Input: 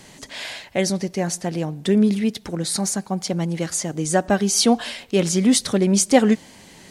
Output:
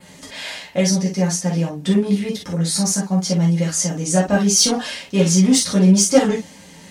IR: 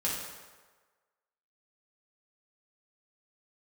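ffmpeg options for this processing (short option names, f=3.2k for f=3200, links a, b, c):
-filter_complex "[0:a]acontrast=74,adynamicequalizer=threshold=0.0224:dfrequency=5900:dqfactor=2.5:tfrequency=5900:tqfactor=2.5:attack=5:release=100:ratio=0.375:range=3:mode=boostabove:tftype=bell[a];[1:a]atrim=start_sample=2205,atrim=end_sample=3087[b];[a][b]afir=irnorm=-1:irlink=0,volume=-9.5dB"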